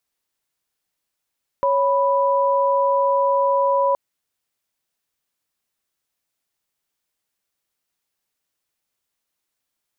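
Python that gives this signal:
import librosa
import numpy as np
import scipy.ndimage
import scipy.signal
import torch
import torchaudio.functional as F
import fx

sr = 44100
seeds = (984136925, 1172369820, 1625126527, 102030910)

y = fx.chord(sr, length_s=2.32, notes=(73, 83), wave='sine', level_db=-18.0)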